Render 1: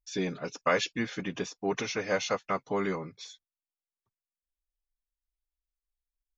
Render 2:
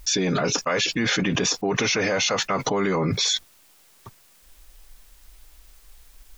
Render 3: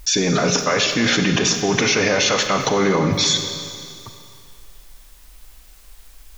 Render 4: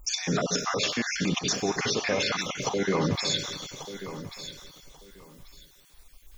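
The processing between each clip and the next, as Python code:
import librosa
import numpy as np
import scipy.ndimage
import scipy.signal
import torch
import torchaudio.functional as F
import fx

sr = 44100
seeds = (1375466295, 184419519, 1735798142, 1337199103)

y1 = fx.env_flatten(x, sr, amount_pct=100)
y2 = fx.rev_schroeder(y1, sr, rt60_s=2.3, comb_ms=30, drr_db=5.5)
y2 = y2 * 10.0 ** (4.0 / 20.0)
y3 = fx.spec_dropout(y2, sr, seeds[0], share_pct=38)
y3 = fx.echo_feedback(y3, sr, ms=1138, feedback_pct=20, wet_db=-12.5)
y3 = y3 * 10.0 ** (-7.5 / 20.0)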